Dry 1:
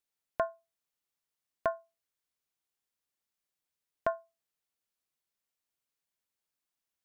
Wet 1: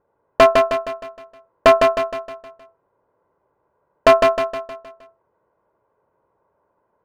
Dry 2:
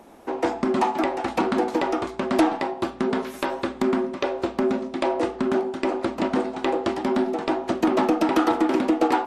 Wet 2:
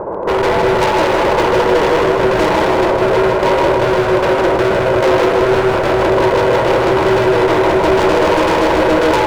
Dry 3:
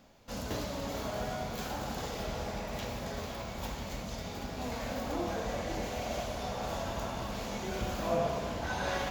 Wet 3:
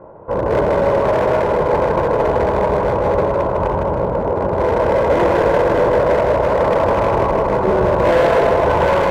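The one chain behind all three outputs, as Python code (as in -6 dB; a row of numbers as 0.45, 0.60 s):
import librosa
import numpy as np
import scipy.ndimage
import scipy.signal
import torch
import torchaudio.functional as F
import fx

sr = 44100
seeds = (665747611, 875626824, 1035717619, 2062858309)

p1 = fx.lower_of_two(x, sr, delay_ms=2.0)
p2 = scipy.signal.sosfilt(scipy.signal.butter(4, 1000.0, 'lowpass', fs=sr, output='sos'), p1)
p3 = fx.over_compress(p2, sr, threshold_db=-36.0, ratio=-1.0)
p4 = p2 + (p3 * 10.0 ** (-2.0 / 20.0))
p5 = 10.0 ** (-23.5 / 20.0) * np.tanh(p4 / 10.0 ** (-23.5 / 20.0))
p6 = fx.highpass(p5, sr, hz=85.0, slope=6)
p7 = fx.low_shelf(p6, sr, hz=140.0, db=-8.0)
p8 = np.clip(p7, -10.0 ** (-34.5 / 20.0), 10.0 ** (-34.5 / 20.0))
p9 = p8 + fx.echo_feedback(p8, sr, ms=156, feedback_pct=47, wet_db=-4.0, dry=0)
y = p9 * 10.0 ** (-6 / 20.0) / np.max(np.abs(p9))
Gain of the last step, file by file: +28.5, +21.5, +22.0 dB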